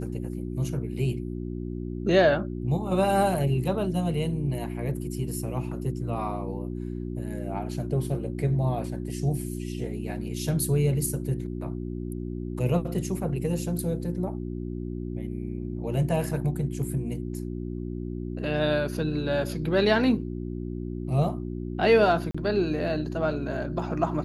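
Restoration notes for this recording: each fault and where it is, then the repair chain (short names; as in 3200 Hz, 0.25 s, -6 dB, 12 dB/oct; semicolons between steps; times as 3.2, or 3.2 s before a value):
hum 60 Hz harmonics 6 -33 dBFS
22.31–22.34 gap 35 ms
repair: de-hum 60 Hz, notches 6; interpolate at 22.31, 35 ms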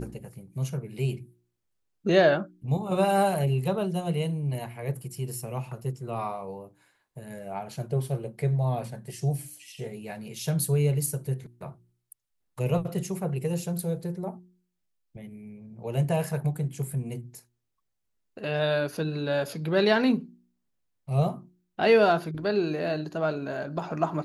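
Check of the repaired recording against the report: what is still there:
none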